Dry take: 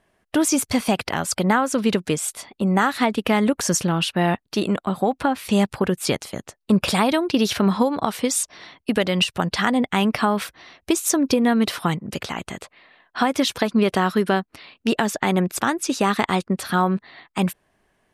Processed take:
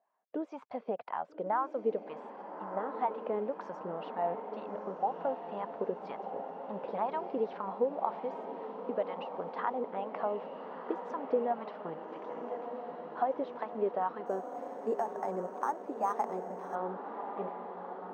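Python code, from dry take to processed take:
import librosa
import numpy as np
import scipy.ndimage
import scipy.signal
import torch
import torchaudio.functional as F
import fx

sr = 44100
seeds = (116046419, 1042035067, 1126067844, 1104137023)

y = scipy.signal.sosfilt(scipy.signal.butter(2, 150.0, 'highpass', fs=sr, output='sos'), x)
y = fx.peak_eq(y, sr, hz=350.0, db=-5.0, octaves=0.29)
y = fx.wah_lfo(y, sr, hz=2.0, low_hz=440.0, high_hz=1000.0, q=4.8)
y = fx.air_absorb(y, sr, metres=230.0)
y = fx.echo_diffused(y, sr, ms=1275, feedback_pct=68, wet_db=-8)
y = fx.resample_linear(y, sr, factor=6, at=(14.26, 16.75))
y = y * 10.0 ** (-3.0 / 20.0)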